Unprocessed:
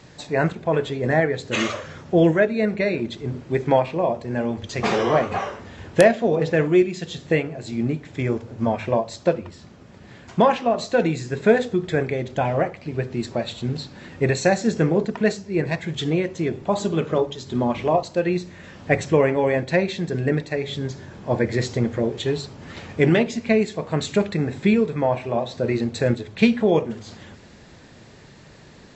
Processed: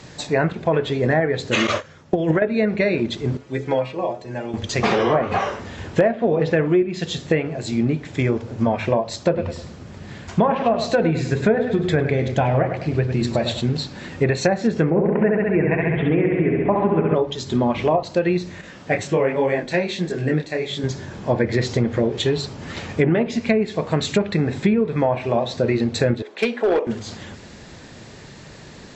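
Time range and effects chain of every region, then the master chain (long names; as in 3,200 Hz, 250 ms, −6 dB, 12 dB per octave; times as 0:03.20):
0:01.67–0:02.42: mains-hum notches 60/120/180/240/300/360/420/480/540 Hz + noise gate −32 dBFS, range −17 dB + compressor whose output falls as the input rises −19 dBFS, ratio −0.5
0:03.37–0:04.54: low-shelf EQ 130 Hz −10 dB + stiff-string resonator 63 Hz, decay 0.23 s, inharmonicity 0.008
0:09.24–0:13.61: parametric band 77 Hz +6.5 dB 2.1 octaves + mains-hum notches 60/120/180/240/300/360/420/480/540 Hz + repeating echo 102 ms, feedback 35%, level −11 dB
0:14.90–0:17.15: Butterworth low-pass 2,600 Hz 48 dB per octave + flutter between parallel walls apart 11.6 metres, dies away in 1.4 s
0:18.61–0:20.84: parametric band 74 Hz −9.5 dB 1.2 octaves + micro pitch shift up and down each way 46 cents
0:26.22–0:26.87: high-pass filter 340 Hz 24 dB per octave + high-shelf EQ 2,400 Hz −9.5 dB + gain into a clipping stage and back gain 16.5 dB
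whole clip: treble cut that deepens with the level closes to 1,700 Hz, closed at −13 dBFS; high-shelf EQ 5,100 Hz +4 dB; downward compressor 3 to 1, threshold −21 dBFS; level +5.5 dB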